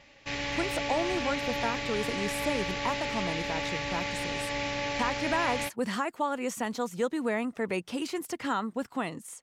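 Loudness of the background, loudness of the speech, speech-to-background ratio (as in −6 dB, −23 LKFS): −32.0 LKFS, −33.0 LKFS, −1.0 dB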